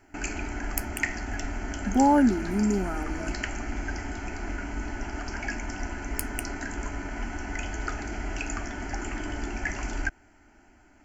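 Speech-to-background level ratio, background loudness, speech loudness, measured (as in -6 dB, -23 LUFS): 7.0 dB, -34.0 LUFS, -27.0 LUFS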